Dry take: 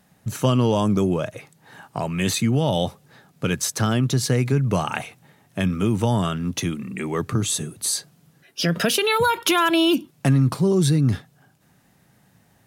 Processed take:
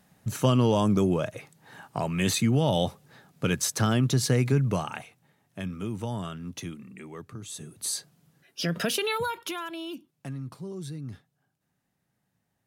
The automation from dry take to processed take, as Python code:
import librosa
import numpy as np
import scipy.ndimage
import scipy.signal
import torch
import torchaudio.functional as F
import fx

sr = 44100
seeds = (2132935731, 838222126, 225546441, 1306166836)

y = fx.gain(x, sr, db=fx.line((4.61, -3.0), (5.04, -12.0), (6.71, -12.0), (7.4, -19.0), (7.82, -7.0), (9.04, -7.0), (9.75, -19.0)))